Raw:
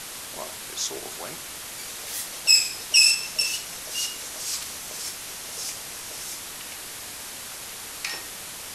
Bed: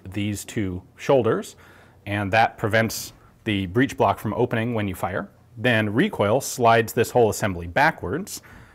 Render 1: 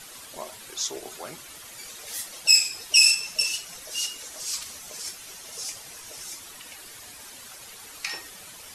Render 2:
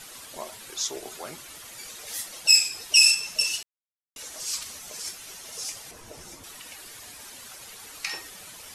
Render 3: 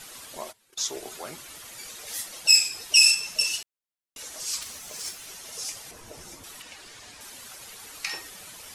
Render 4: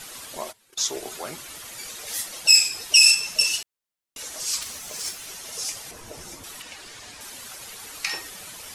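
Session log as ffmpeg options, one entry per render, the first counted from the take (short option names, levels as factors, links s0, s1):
-af "afftdn=nr=10:nf=-38"
-filter_complex "[0:a]asettb=1/sr,asplit=3[s0][s1][s2];[s0]atrim=end=5.914[s3];[s1]atrim=start=5.91:end=6.44,asetpts=PTS-STARTPTS,afade=t=in:d=0.004:c=qsin,afade=t=out:st=0.526:d=0.004:c=qsin,tiltshelf=f=1100:g=8[s4];[s2]atrim=start=6.436[s5];[s3][s4]acrossfade=d=0.004:c1=hsin:c2=qsin[s6];[s6][s5]acrossfade=d=0.004:c1=qsin:c2=hsin,asplit=3[s7][s8][s9];[s7]atrim=end=3.63,asetpts=PTS-STARTPTS,afade=t=out:st=3.626:d=0.004:c=hsin[s10];[s8]atrim=start=3.63:end=4.16,asetpts=PTS-STARTPTS,volume=0[s11];[s9]atrim=start=4.16,asetpts=PTS-STARTPTS,afade=t=in:d=0.004:c=hsin[s12];[s10][s11][s12]concat=n=3:v=0:a=1"
-filter_complex "[0:a]asplit=3[s0][s1][s2];[s0]afade=t=out:st=0.51:d=0.02[s3];[s1]agate=range=0.0794:threshold=0.01:ratio=16:release=100:detection=peak,afade=t=in:st=0.51:d=0.02,afade=t=out:st=0.94:d=0.02[s4];[s2]afade=t=in:st=0.94:d=0.02[s5];[s3][s4][s5]amix=inputs=3:normalize=0,asettb=1/sr,asplit=3[s6][s7][s8];[s6]atrim=end=4.614[s9];[s7]atrim=start=4.61:end=5.27,asetpts=PTS-STARTPTS,afade=t=in:d=0.004:c=qsin,afade=t=out:st=0.656:d=0.004:c=qsin,acrusher=bits=3:mode=log:mix=0:aa=0.000001[s10];[s8]atrim=start=5.266[s11];[s9][s10]acrossfade=d=0.004:c1=hsin:c2=qsin[s12];[s12][s11]acrossfade=d=0.004:c1=qsin:c2=hsin,asettb=1/sr,asplit=3[s13][s14][s15];[s13]atrim=end=6.624[s16];[s14]atrim=start=6.62:end=7.21,asetpts=PTS-STARTPTS,afade=t=in:d=0.004:c=qsin,afade=t=out:st=0.586:d=0.004:c=qsin,lowpass=7000[s17];[s15]atrim=start=7.206[s18];[s16][s17]acrossfade=d=0.004:c1=hsin:c2=qsin[s19];[s19][s18]acrossfade=d=0.004:c1=qsin:c2=hsin"
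-af "volume=1.58,alimiter=limit=0.708:level=0:latency=1"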